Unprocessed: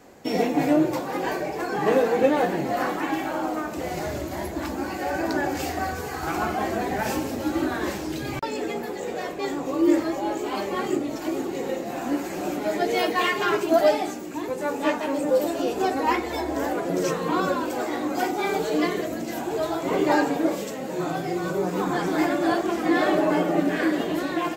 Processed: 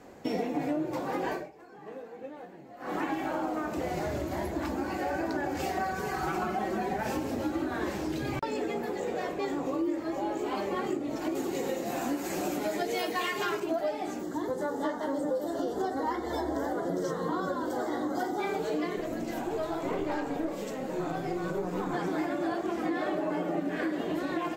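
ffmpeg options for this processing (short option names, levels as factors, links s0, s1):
-filter_complex "[0:a]asettb=1/sr,asplit=3[s0][s1][s2];[s0]atrim=end=5.634[s3];[s1]atrim=start=5.63:end=6.97,asetpts=PTS-STARTPTS,afade=t=in:d=0.004:c=qsin,afade=t=out:st=1.336:d=0.004:c=qsin,aecho=1:1:5.3:0.7,atrim=end_sample=59094[s4];[s2]atrim=start=6.966[s5];[s3][s4]acrossfade=d=0.004:c1=hsin:c2=qsin[s6];[s6][s5]acrossfade=d=0.004:c1=qsin:c2=hsin,asettb=1/sr,asplit=3[s7][s8][s9];[s7]atrim=end=11.354[s10];[s8]atrim=start=11.35:end=13.6,asetpts=PTS-STARTPTS,afade=t=in:d=0.004:c=qsin,afade=t=out:st=2.246:d=0.004:c=qsin,highshelf=f=4000:g=12[s11];[s9]atrim=start=13.596[s12];[s10][s11]acrossfade=d=0.004:c1=hsin:c2=qsin[s13];[s13][s12]acrossfade=d=0.004:c1=qsin:c2=hsin,asettb=1/sr,asplit=3[s14][s15][s16];[s14]atrim=end=14.234[s17];[s15]atrim=start=14.23:end=18.4,asetpts=PTS-STARTPTS,afade=t=in:d=0.004:c=qsin,afade=t=out:st=4.166:d=0.004:c=qsin,asuperstop=centerf=2500:order=4:qfactor=2.2[s18];[s16]atrim=start=18.396[s19];[s17][s18]acrossfade=d=0.004:c1=hsin:c2=qsin[s20];[s20][s19]acrossfade=d=0.004:c1=qsin:c2=hsin,asettb=1/sr,asplit=3[s21][s22][s23];[s21]atrim=end=18.964[s24];[s22]atrim=start=18.96:end=21.94,asetpts=PTS-STARTPTS,afade=t=in:d=0.004:c=qsin,afade=t=out:st=2.976:d=0.004:c=qsin,aeval=exprs='(tanh(6.31*val(0)+0.55)-tanh(0.55))/6.31':c=same[s25];[s23]atrim=start=21.936[s26];[s24][s25]acrossfade=d=0.004:c1=hsin:c2=qsin[s27];[s27][s26]acrossfade=d=0.004:c1=qsin:c2=hsin,asplit=3[s28][s29][s30];[s28]atrim=end=1.53,asetpts=PTS-STARTPTS,afade=t=out:st=1.33:d=0.2:c=qua:silence=0.0749894[s31];[s29]atrim=start=1.53:end=2.77,asetpts=PTS-STARTPTS,volume=0.075[s32];[s30]atrim=start=2.77,asetpts=PTS-STARTPTS,afade=t=in:d=0.2:c=qua:silence=0.0749894[s33];[s31][s32][s33]concat=n=3:v=0:a=1,lowpass=f=1800:p=1,aemphasis=mode=production:type=cd,acompressor=threshold=0.0398:ratio=6"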